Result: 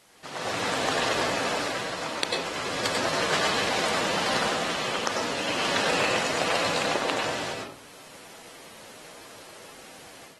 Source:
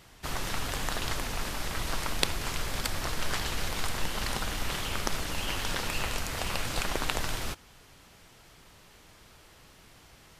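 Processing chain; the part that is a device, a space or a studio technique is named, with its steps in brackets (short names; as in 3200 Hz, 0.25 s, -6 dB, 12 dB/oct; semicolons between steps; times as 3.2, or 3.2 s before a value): HPF 69 Hz 6 dB/oct; filmed off a television (BPF 210–7700 Hz; bell 580 Hz +4.5 dB 0.5 oct; reverb RT60 0.50 s, pre-delay 91 ms, DRR -1 dB; white noise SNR 22 dB; AGC gain up to 10 dB; gain -6 dB; AAC 32 kbps 48000 Hz)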